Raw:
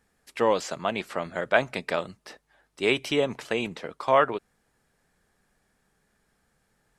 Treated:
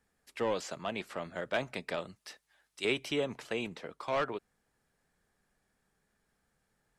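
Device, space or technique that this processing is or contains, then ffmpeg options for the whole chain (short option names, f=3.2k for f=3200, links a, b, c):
one-band saturation: -filter_complex "[0:a]asettb=1/sr,asplit=3[a][b][c];[a]atrim=end=2.164[d];[b]atrim=start=2.16:end=2.85,asetpts=PTS-STARTPTS,afade=t=in:d=0.004:c=qsin,afade=t=out:st=0.686:d=0.004:c=qsin,tiltshelf=f=1.4k:g=-7.5[e];[c]atrim=start=2.846[f];[d][e]acrossfade=d=0.004:c1=hsin:c2=qsin[g];[g][f]acrossfade=d=0.004:c1=qsin:c2=hsin,acrossover=split=420|2000[h][i][j];[i]asoftclip=type=tanh:threshold=-23dB[k];[h][k][j]amix=inputs=3:normalize=0,volume=-7dB"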